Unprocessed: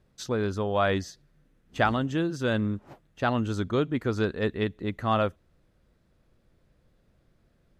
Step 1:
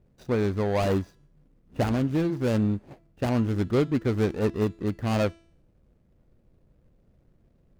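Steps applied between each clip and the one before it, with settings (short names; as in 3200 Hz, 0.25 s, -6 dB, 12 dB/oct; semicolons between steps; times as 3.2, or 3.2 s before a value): median filter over 41 samples; de-hum 333.2 Hz, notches 33; gain +4 dB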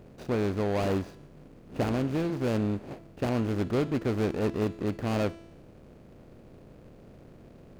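per-bin compression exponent 0.6; gain -6 dB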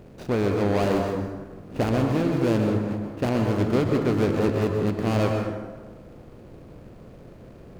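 plate-style reverb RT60 1.4 s, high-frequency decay 0.45×, pre-delay 0.11 s, DRR 2.5 dB; gain +4 dB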